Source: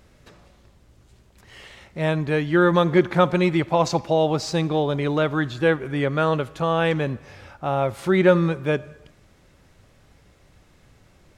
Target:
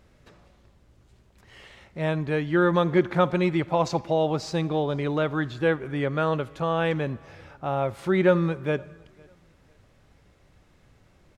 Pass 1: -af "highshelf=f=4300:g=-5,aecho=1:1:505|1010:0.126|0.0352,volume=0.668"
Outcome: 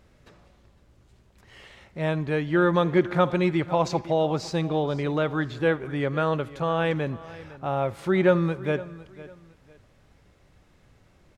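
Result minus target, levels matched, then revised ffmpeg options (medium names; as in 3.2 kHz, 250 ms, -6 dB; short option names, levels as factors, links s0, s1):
echo-to-direct +10.5 dB
-af "highshelf=f=4300:g=-5,aecho=1:1:505|1010:0.0376|0.0105,volume=0.668"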